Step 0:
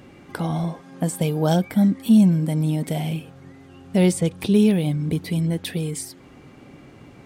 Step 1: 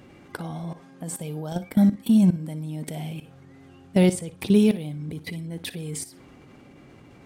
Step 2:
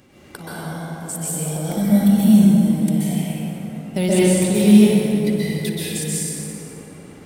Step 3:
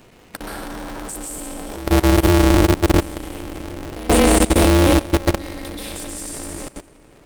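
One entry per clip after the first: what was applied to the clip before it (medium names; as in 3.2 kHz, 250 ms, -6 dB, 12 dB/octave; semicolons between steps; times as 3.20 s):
level held to a coarse grid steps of 17 dB; flutter echo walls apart 10.1 m, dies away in 0.23 s; trim +1.5 dB
treble shelf 4 kHz +10.5 dB; plate-style reverb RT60 3.7 s, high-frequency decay 0.45×, pre-delay 115 ms, DRR -9.5 dB; trim -4 dB
level held to a coarse grid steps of 18 dB; polarity switched at an audio rate 130 Hz; trim +5.5 dB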